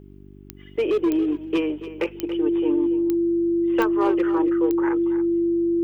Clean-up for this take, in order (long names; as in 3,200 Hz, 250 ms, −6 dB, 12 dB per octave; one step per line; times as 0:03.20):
click removal
hum removal 48.9 Hz, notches 8
notch filter 340 Hz, Q 30
echo removal 281 ms −13.5 dB